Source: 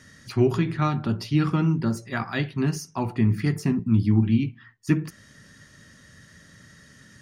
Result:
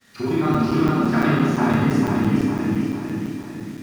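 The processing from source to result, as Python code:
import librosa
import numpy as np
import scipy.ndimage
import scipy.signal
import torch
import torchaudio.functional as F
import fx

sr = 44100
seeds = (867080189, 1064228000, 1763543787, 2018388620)

y = scipy.signal.sosfilt(scipy.signal.butter(2, 200.0, 'highpass', fs=sr, output='sos'), x)
y = fx.high_shelf(y, sr, hz=2300.0, db=-7.0)
y = fx.level_steps(y, sr, step_db=16)
y = fx.quant_dither(y, sr, seeds[0], bits=10, dither='none')
y = fx.granulator(y, sr, seeds[1], grain_ms=100.0, per_s=20.0, spray_ms=15.0, spread_st=0)
y = fx.stretch_vocoder(y, sr, factor=0.53)
y = fx.echo_feedback(y, sr, ms=452, feedback_pct=51, wet_db=-3)
y = fx.rev_schroeder(y, sr, rt60_s=1.4, comb_ms=27, drr_db=-7.0)
y = fx.buffer_crackle(y, sr, first_s=0.54, period_s=0.17, block=256, kind='zero')
y = F.gain(torch.from_numpy(y), 8.0).numpy()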